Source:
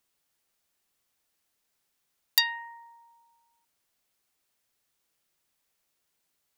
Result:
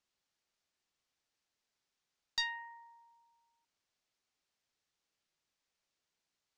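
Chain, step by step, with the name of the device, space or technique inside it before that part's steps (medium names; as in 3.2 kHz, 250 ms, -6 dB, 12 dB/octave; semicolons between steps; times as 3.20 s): overdriven synthesiser ladder filter (saturation -20.5 dBFS, distortion -6 dB; four-pole ladder low-pass 7.8 kHz, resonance 20%); trim -1.5 dB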